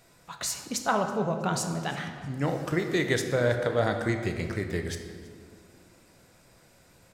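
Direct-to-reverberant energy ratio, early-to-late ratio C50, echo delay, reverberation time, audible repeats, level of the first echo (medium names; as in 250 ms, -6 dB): 4.5 dB, 6.5 dB, 324 ms, 2.0 s, 2, -23.0 dB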